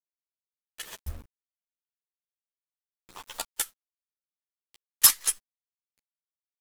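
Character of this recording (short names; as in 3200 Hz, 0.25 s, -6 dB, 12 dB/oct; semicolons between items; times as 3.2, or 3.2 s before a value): a quantiser's noise floor 8-bit, dither none; chopped level 1.3 Hz, depth 65%, duty 60%; a shimmering, thickened sound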